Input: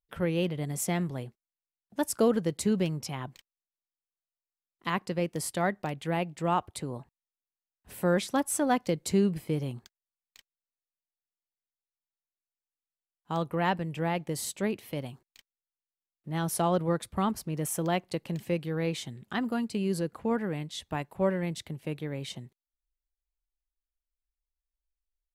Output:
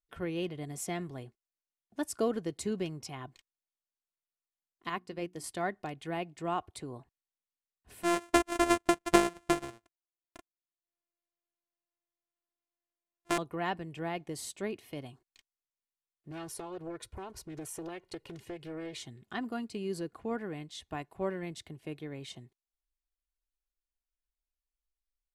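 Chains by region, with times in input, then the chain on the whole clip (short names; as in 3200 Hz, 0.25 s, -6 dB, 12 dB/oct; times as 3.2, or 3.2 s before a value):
4.89–5.44 notches 60/120/180/240/300/360 Hz + upward expander, over -43 dBFS
8.03–13.38 sample sorter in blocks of 128 samples + bell 150 Hz -6.5 dB 1.6 oct + transient shaper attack +11 dB, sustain -10 dB
16.31–19.03 compressor 10:1, threshold -32 dBFS + comb 2.1 ms, depth 64% + Doppler distortion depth 0.45 ms
whole clip: LPF 11000 Hz 12 dB/oct; comb 2.8 ms, depth 39%; gain -6 dB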